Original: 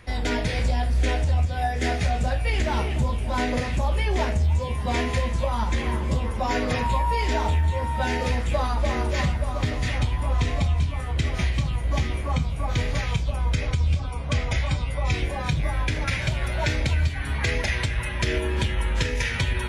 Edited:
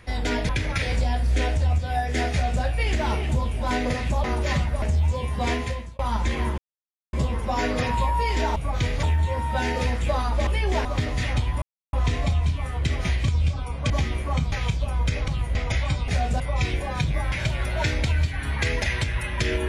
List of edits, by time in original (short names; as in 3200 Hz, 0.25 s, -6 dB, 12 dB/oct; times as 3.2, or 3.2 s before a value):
1.98–2.3 copy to 14.89
3.91–4.29 swap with 8.92–9.5
4.98–5.46 fade out
6.05 insert silence 0.55 s
10.27 insert silence 0.31 s
11.62–11.89 swap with 13.74–14.36
12.51–12.98 move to 7.48
15.81–16.14 move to 0.49